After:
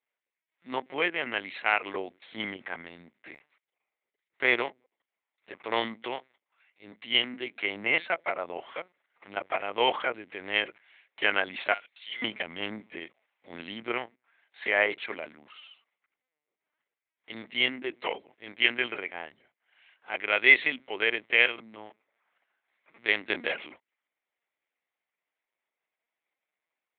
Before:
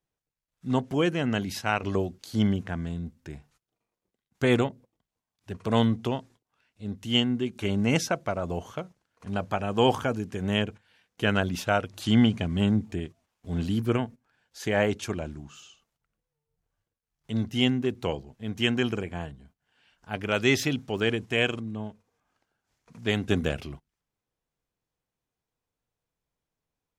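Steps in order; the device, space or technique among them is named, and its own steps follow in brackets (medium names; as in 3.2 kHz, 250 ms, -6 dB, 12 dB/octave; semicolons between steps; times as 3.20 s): 11.73–12.23 s: differentiator; talking toy (LPC vocoder at 8 kHz pitch kept; high-pass 530 Hz 12 dB/octave; peaking EQ 2.1 kHz +12 dB 0.43 oct)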